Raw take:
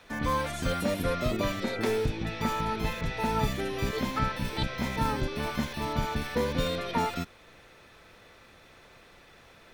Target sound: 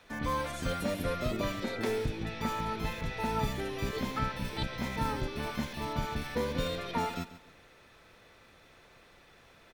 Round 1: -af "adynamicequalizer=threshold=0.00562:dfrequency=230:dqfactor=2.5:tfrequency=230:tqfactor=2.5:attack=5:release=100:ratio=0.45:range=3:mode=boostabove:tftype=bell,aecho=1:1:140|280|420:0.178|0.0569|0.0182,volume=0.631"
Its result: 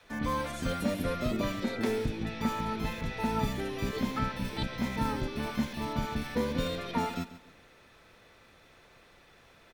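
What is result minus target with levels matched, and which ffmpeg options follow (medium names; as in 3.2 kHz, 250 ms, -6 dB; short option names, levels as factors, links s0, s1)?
250 Hz band +3.0 dB
-af "aecho=1:1:140|280|420:0.178|0.0569|0.0182,volume=0.631"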